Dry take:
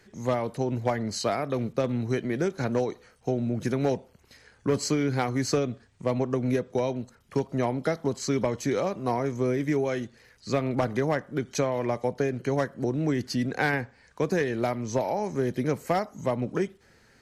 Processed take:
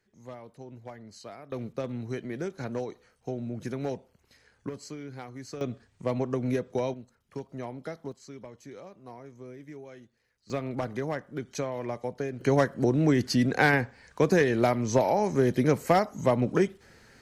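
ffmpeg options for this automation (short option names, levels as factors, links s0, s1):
-af "asetnsamples=n=441:p=0,asendcmd='1.52 volume volume -7dB;4.69 volume volume -15dB;5.61 volume volume -2.5dB;6.94 volume volume -11dB;8.12 volume volume -18.5dB;10.5 volume volume -6dB;12.41 volume volume 3.5dB',volume=0.141"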